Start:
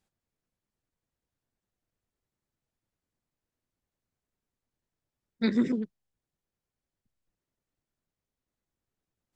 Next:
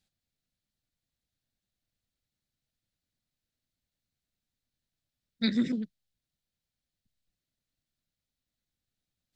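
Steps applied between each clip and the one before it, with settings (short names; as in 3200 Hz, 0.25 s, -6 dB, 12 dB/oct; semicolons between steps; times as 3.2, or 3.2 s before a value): fifteen-band EQ 400 Hz -9 dB, 1000 Hz -11 dB, 4000 Hz +8 dB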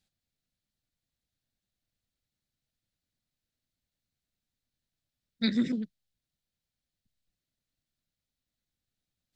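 nothing audible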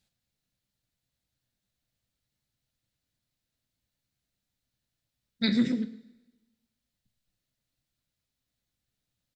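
echo 0.109 s -16.5 dB; on a send at -7 dB: reverb, pre-delay 3 ms; on the sum: gain +2.5 dB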